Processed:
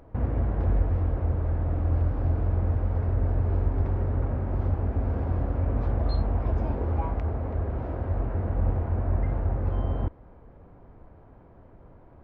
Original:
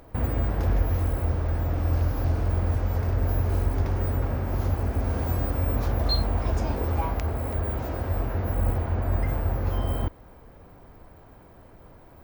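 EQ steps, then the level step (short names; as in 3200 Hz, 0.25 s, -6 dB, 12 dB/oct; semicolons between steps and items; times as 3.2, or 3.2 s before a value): tape spacing loss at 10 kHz 42 dB; 0.0 dB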